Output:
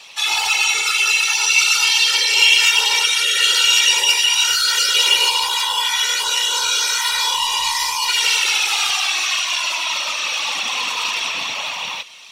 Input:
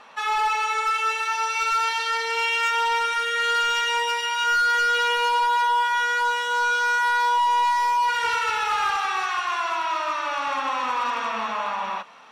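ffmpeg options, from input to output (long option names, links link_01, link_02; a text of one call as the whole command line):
ffmpeg -i in.wav -af "acontrast=41,aexciter=amount=10.8:drive=5.2:freq=2300,afftfilt=real='hypot(re,im)*cos(2*PI*random(0))':imag='hypot(re,im)*sin(2*PI*random(1))':win_size=512:overlap=0.75,volume=-4dB" out.wav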